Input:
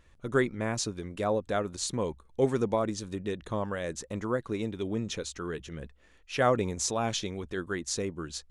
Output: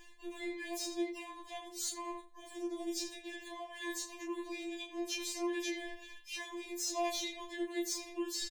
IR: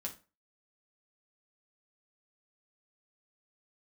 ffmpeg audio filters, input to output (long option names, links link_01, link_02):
-filter_complex "[0:a]tiltshelf=frequency=880:gain=-6,acrossover=split=430|3000[link_01][link_02][link_03];[link_02]acompressor=threshold=-37dB:ratio=10[link_04];[link_01][link_04][link_03]amix=inputs=3:normalize=0,asplit=2[link_05][link_06];[link_06]asetrate=88200,aresample=44100,atempo=0.5,volume=-12dB[link_07];[link_05][link_07]amix=inputs=2:normalize=0,asuperstop=centerf=1300:order=20:qfactor=5.9,acrossover=split=310[link_08][link_09];[link_09]asoftclip=type=tanh:threshold=-23dB[link_10];[link_08][link_10]amix=inputs=2:normalize=0,equalizer=frequency=480:width=4.3:gain=10,asplit=2[link_11][link_12];[link_12]adelay=29,volume=-5dB[link_13];[link_11][link_13]amix=inputs=2:normalize=0,asplit=2[link_14][link_15];[link_15]adelay=80,lowpass=frequency=3200:poles=1,volume=-9dB,asplit=2[link_16][link_17];[link_17]adelay=80,lowpass=frequency=3200:poles=1,volume=0.31,asplit=2[link_18][link_19];[link_19]adelay=80,lowpass=frequency=3200:poles=1,volume=0.31,asplit=2[link_20][link_21];[link_21]adelay=80,lowpass=frequency=3200:poles=1,volume=0.31[link_22];[link_14][link_16][link_18][link_20][link_22]amix=inputs=5:normalize=0,areverse,acompressor=threshold=-44dB:ratio=5,areverse,afftfilt=real='re*4*eq(mod(b,16),0)':imag='im*4*eq(mod(b,16),0)':win_size=2048:overlap=0.75,volume=8.5dB"